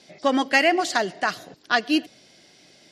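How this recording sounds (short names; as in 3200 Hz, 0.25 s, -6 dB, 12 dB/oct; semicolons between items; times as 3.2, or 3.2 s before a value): noise floor -55 dBFS; spectral tilt -2.5 dB/oct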